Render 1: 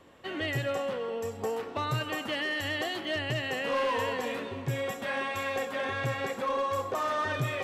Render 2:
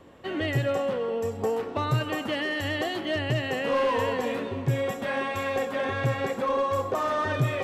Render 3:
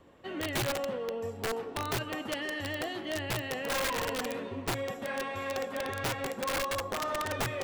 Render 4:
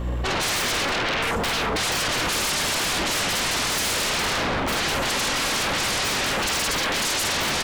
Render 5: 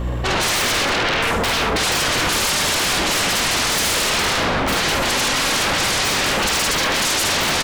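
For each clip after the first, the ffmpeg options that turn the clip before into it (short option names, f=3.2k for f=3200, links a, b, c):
-af "tiltshelf=f=870:g=3.5,volume=3.5dB"
-filter_complex "[0:a]acrossover=split=5300[a][b];[b]alimiter=level_in=20dB:limit=-24dB:level=0:latency=1,volume=-20dB[c];[a][c]amix=inputs=2:normalize=0,flanger=delay=0.6:depth=7.8:regen=78:speed=0.83:shape=triangular,aeval=exprs='(mod(15.8*val(0)+1,2)-1)/15.8':c=same,volume=-2dB"
-filter_complex "[0:a]aeval=exprs='val(0)+0.00355*(sin(2*PI*60*n/s)+sin(2*PI*2*60*n/s)/2+sin(2*PI*3*60*n/s)/3+sin(2*PI*4*60*n/s)/4+sin(2*PI*5*60*n/s)/5)':c=same,asplit=2[a][b];[b]adelay=48,volume=-3dB[c];[a][c]amix=inputs=2:normalize=0,aeval=exprs='0.0891*sin(PI/2*8.91*val(0)/0.0891)':c=same"
-af "aecho=1:1:74:0.355,volume=4.5dB"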